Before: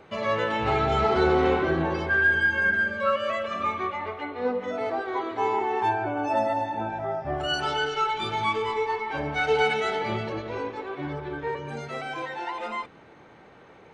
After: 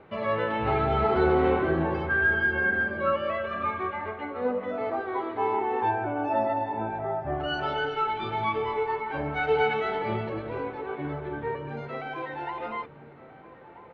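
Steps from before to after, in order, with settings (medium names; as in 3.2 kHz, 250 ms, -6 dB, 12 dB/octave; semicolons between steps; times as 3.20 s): distance through air 340 m; echo from a far wall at 220 m, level -14 dB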